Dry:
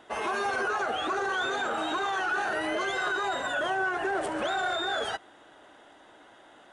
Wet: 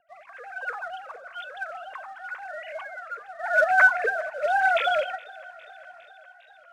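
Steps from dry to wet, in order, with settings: sine-wave speech; rotary speaker horn 1 Hz; spectral gain 3.4–6.08, 240–2700 Hz +12 dB; in parallel at -9 dB: companded quantiser 4-bit; on the sum: air absorption 58 m; thinning echo 0.407 s, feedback 71%, high-pass 310 Hz, level -21.5 dB; on a send at -16 dB: reverb RT60 0.40 s, pre-delay 3 ms; on the sum: record warp 33 1/3 rpm, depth 100 cents; gain -6 dB

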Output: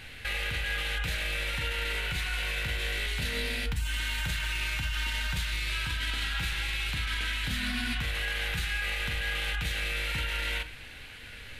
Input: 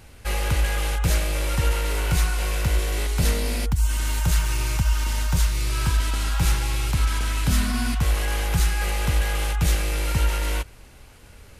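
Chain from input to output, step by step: band shelf 2500 Hz +13.5 dB; limiter -20.5 dBFS, peak gain reduction 15 dB; on a send: reverb RT60 0.30 s, pre-delay 4 ms, DRR 8 dB; on the sum: gain -3 dB

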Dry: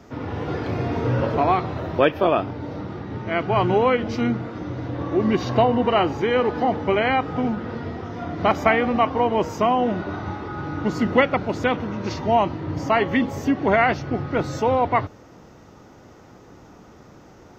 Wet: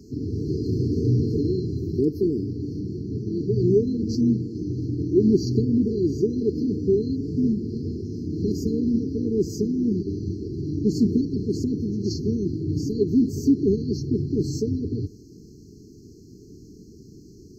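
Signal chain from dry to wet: brick-wall FIR band-stop 450–4100 Hz; gain +2.5 dB

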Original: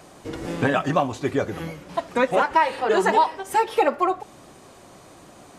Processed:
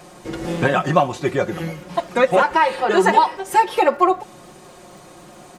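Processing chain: comb 5.6 ms, depth 56%; crackle 55/s -45 dBFS; gain +3 dB

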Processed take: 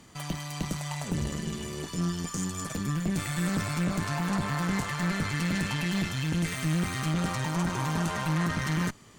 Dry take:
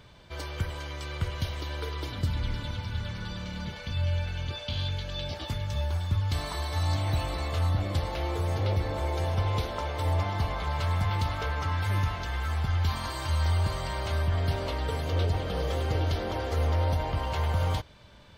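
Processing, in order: speed mistake 7.5 ips tape played at 15 ips; tube stage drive 26 dB, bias 0.7; gain +3.5 dB

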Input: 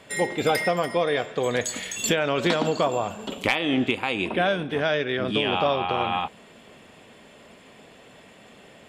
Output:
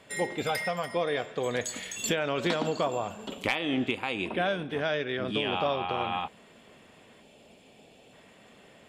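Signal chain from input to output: 0.43–0.93 bell 340 Hz -12.5 dB 0.76 oct; 7.22–8.13 spectral gain 920–2200 Hz -8 dB; gain -5.5 dB

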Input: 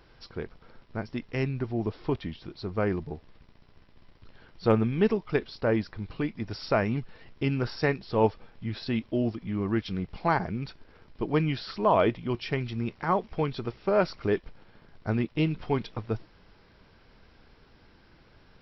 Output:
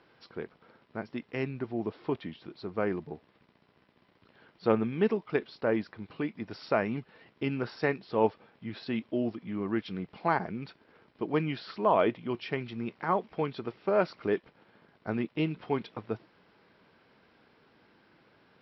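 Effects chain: BPF 180–3800 Hz; gain -2 dB

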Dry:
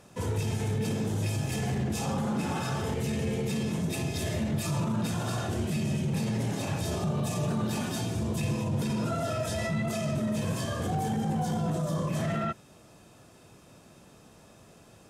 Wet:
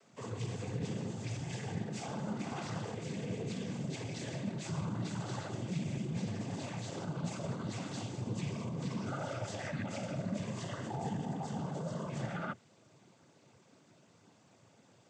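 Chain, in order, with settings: noise vocoder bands 16; gain -8 dB

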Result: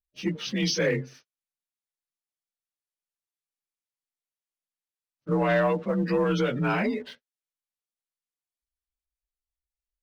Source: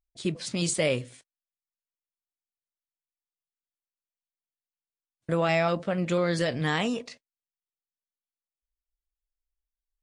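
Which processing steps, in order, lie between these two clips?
inharmonic rescaling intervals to 88%; spectral gate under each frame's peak -30 dB strong; sample leveller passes 1

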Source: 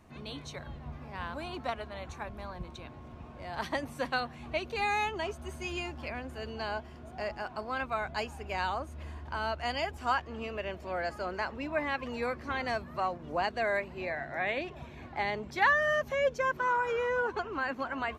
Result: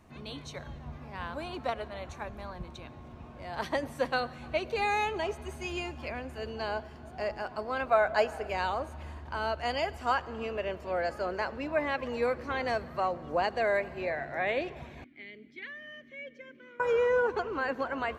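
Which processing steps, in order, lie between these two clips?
7.86–8.5 fifteen-band EQ 100 Hz -10 dB, 630 Hz +10 dB, 1600 Hz +7 dB; reverb RT60 2.8 s, pre-delay 62 ms, DRR 18 dB; dynamic EQ 490 Hz, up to +6 dB, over -45 dBFS, Q 1.8; 15.04–16.8 vowel filter i

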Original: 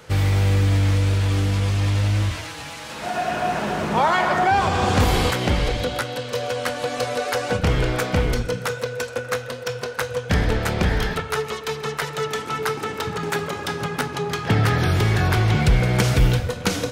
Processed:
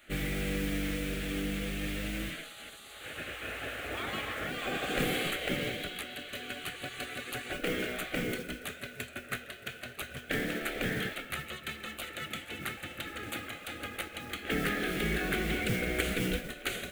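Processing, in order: fixed phaser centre 2300 Hz, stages 4; modulation noise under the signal 25 dB; spectral gate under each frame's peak -10 dB weak; gain -5 dB

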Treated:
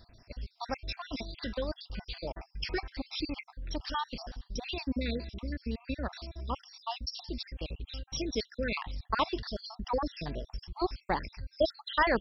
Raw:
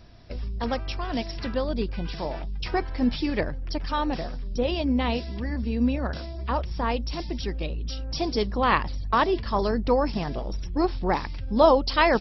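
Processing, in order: random spectral dropouts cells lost 57%; high shelf 2700 Hz +10 dB; gain -6.5 dB

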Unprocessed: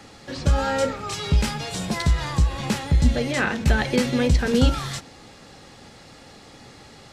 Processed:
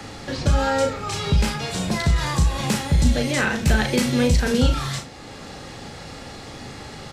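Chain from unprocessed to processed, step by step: 2.16–4.52 high shelf 5800 Hz +9 dB; early reflections 37 ms -6 dB, 78 ms -17.5 dB; three-band squash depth 40%

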